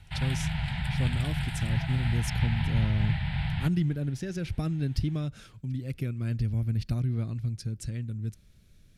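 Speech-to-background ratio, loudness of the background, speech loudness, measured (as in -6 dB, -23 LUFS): 0.0 dB, -31.5 LUFS, -31.5 LUFS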